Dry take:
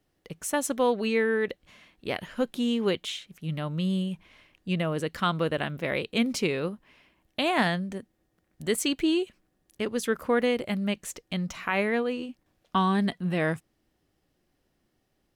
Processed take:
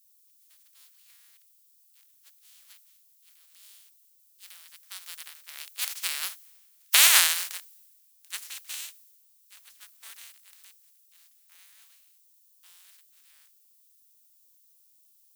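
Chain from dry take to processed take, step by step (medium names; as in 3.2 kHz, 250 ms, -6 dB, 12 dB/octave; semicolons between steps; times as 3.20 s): spectral contrast reduction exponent 0.16; Doppler pass-by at 6.87 s, 21 m/s, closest 1.2 m; in parallel at -8.5 dB: word length cut 8-bit, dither none; on the sum: added noise violet -67 dBFS; high-pass 1.4 kHz 12 dB/octave; loudness maximiser +18.5 dB; three bands expanded up and down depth 70%; trim -7 dB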